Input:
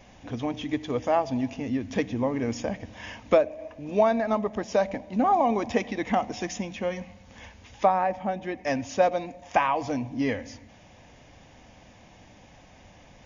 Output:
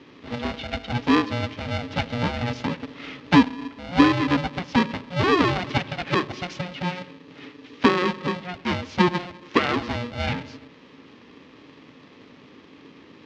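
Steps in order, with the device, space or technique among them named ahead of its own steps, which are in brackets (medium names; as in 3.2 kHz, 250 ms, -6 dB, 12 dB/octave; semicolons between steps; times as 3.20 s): ring modulator pedal into a guitar cabinet (polarity switched at an audio rate 360 Hz; cabinet simulation 91–4400 Hz, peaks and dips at 270 Hz +8 dB, 630 Hz -8 dB, 940 Hz -4 dB, 1.4 kHz -5 dB); trim +3.5 dB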